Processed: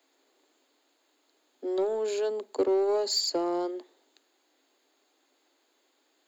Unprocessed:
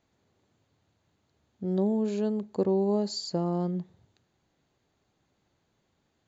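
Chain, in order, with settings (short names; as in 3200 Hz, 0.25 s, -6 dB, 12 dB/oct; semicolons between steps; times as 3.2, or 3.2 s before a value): steep high-pass 260 Hz 96 dB/oct; high shelf 3600 Hz +9.5 dB; notch 5900 Hz, Q 5.2; in parallel at -6 dB: hard clip -31 dBFS, distortion -8 dB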